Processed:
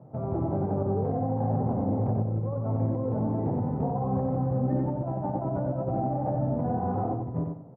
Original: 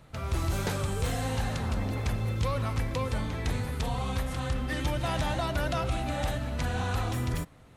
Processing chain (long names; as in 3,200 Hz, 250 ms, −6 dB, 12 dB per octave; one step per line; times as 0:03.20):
Chebyshev band-pass filter 120–790 Hz, order 3
compressor whose output falls as the input rises −35 dBFS, ratio −0.5
repeating echo 92 ms, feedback 27%, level −4.5 dB
level +6 dB